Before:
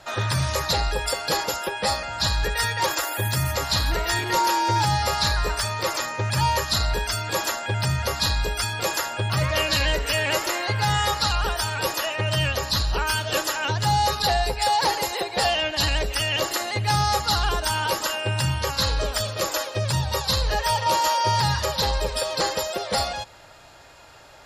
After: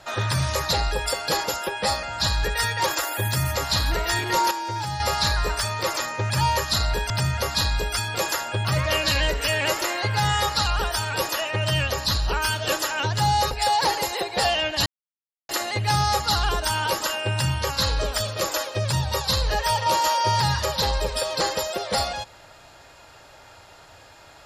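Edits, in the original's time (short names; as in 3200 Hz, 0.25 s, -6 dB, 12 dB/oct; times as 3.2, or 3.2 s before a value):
4.51–5 gain -7.5 dB
7.1–7.75 cut
14.16–14.51 cut
15.86–16.49 mute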